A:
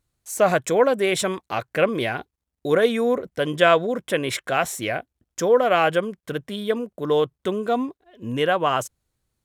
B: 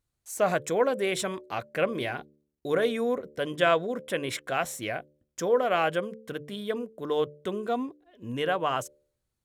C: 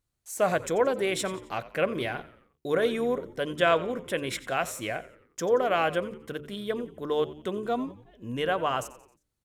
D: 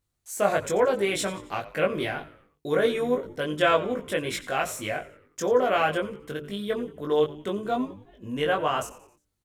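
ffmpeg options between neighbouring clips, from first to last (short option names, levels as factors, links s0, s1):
-af "bandreject=f=73.9:t=h:w=4,bandreject=f=147.8:t=h:w=4,bandreject=f=221.7:t=h:w=4,bandreject=f=295.6:t=h:w=4,bandreject=f=369.5:t=h:w=4,bandreject=f=443.4:t=h:w=4,bandreject=f=517.3:t=h:w=4,bandreject=f=591.2:t=h:w=4,volume=0.473"
-filter_complex "[0:a]asplit=5[s0][s1][s2][s3][s4];[s1]adelay=89,afreqshift=-75,volume=0.141[s5];[s2]adelay=178,afreqshift=-150,volume=0.0661[s6];[s3]adelay=267,afreqshift=-225,volume=0.0313[s7];[s4]adelay=356,afreqshift=-300,volume=0.0146[s8];[s0][s5][s6][s7][s8]amix=inputs=5:normalize=0"
-filter_complex "[0:a]asplit=2[s0][s1];[s1]adelay=20,volume=0.794[s2];[s0][s2]amix=inputs=2:normalize=0"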